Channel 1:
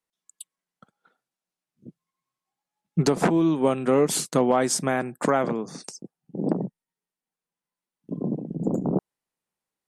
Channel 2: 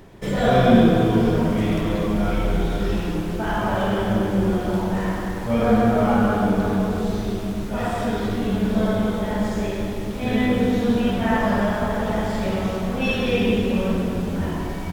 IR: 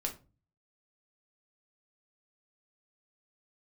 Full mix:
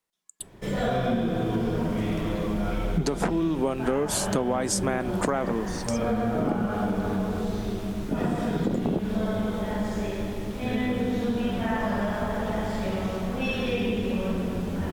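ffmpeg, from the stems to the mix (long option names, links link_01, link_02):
-filter_complex "[0:a]volume=3dB,asplit=2[link_01][link_02];[link_02]volume=-20.5dB[link_03];[1:a]adelay=400,volume=-4.5dB[link_04];[2:a]atrim=start_sample=2205[link_05];[link_03][link_05]afir=irnorm=-1:irlink=0[link_06];[link_01][link_04][link_06]amix=inputs=3:normalize=0,acompressor=threshold=-22dB:ratio=6"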